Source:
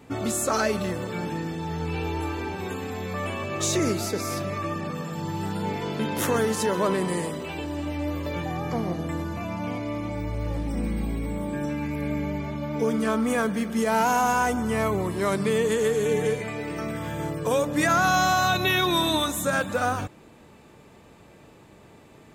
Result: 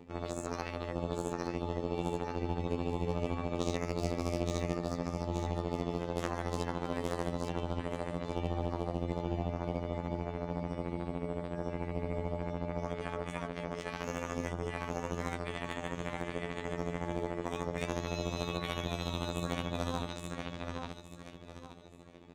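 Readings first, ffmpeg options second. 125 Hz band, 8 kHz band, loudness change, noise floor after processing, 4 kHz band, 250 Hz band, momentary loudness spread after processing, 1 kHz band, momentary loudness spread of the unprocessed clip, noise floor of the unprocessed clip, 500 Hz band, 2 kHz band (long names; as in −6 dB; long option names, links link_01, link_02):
−6.5 dB, −17.0 dB, −10.5 dB, −50 dBFS, −13.5 dB, −10.0 dB, 5 LU, −13.0 dB, 10 LU, −51 dBFS, −10.0 dB, −15.0 dB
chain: -filter_complex "[0:a]lowpass=5300,afftfilt=real='re*lt(hypot(re,im),0.224)':imag='im*lt(hypot(re,im),0.224)':win_size=1024:overlap=0.75,equalizer=frequency=1500:width=5.3:gain=-6.5,aecho=1:1:858|1716|2574|3432|4290:0.631|0.24|0.0911|0.0346|0.0132,acrossover=split=750|3400[link_01][link_02][link_03];[link_01]acontrast=42[link_04];[link_03]alimiter=level_in=7dB:limit=-24dB:level=0:latency=1:release=326,volume=-7dB[link_05];[link_04][link_02][link_05]amix=inputs=3:normalize=0,afftfilt=real='hypot(re,im)*cos(PI*b)':imag='0':win_size=2048:overlap=0.75,asplit=2[link_06][link_07];[link_07]acrusher=bits=3:mix=0:aa=0.5,volume=-9.5dB[link_08];[link_06][link_08]amix=inputs=2:normalize=0,tremolo=f=100:d=0.621,acompressor=mode=upward:threshold=-44dB:ratio=2.5,volume=-5.5dB"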